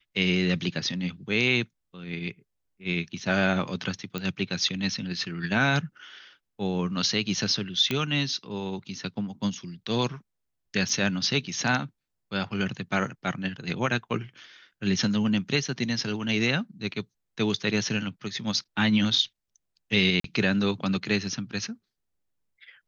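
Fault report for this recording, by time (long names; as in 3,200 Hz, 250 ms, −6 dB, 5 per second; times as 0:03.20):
0:04.18: click −16 dBFS
0:07.91: click −12 dBFS
0:10.89: drop-out 3.1 ms
0:20.20–0:20.24: drop-out 43 ms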